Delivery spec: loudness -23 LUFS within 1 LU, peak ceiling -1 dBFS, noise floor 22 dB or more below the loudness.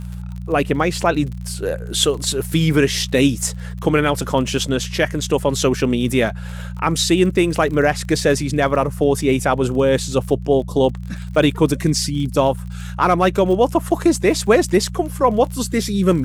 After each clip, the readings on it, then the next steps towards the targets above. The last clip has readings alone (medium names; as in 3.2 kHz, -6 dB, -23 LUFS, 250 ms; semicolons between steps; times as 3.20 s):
tick rate 35 per s; hum 60 Hz; highest harmonic 180 Hz; hum level -26 dBFS; loudness -18.0 LUFS; peak level -2.5 dBFS; loudness target -23.0 LUFS
-> de-click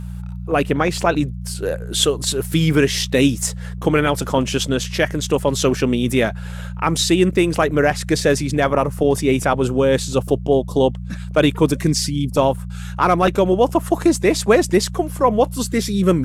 tick rate 1.2 per s; hum 60 Hz; highest harmonic 180 Hz; hum level -26 dBFS
-> de-hum 60 Hz, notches 3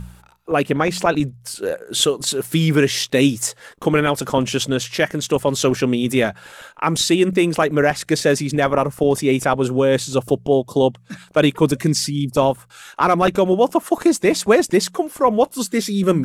hum not found; loudness -18.5 LUFS; peak level -2.0 dBFS; loudness target -23.0 LUFS
-> trim -4.5 dB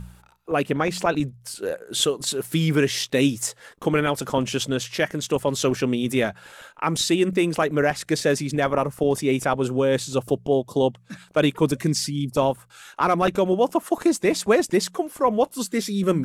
loudness -23.0 LUFS; peak level -6.5 dBFS; noise floor -54 dBFS